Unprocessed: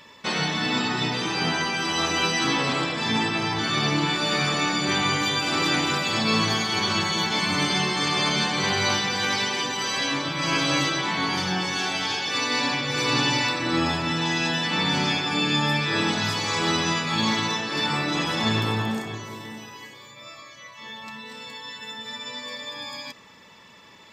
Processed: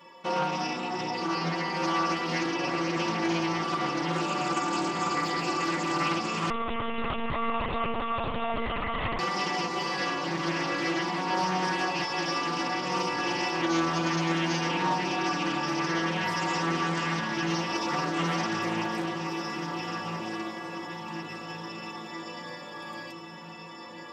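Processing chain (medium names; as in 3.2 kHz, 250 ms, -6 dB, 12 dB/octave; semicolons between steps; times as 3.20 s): high-pass 49 Hz 12 dB/octave; high-order bell 530 Hz +11 dB 2.8 oct; peak limiter -12 dBFS, peak gain reduction 8 dB; inharmonic resonator 170 Hz, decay 0.25 s, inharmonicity 0.008; echo that smears into a reverb 1560 ms, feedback 53%, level -5 dB; 6.50–9.19 s: monotone LPC vocoder at 8 kHz 230 Hz; loudspeaker Doppler distortion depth 0.29 ms; trim +3.5 dB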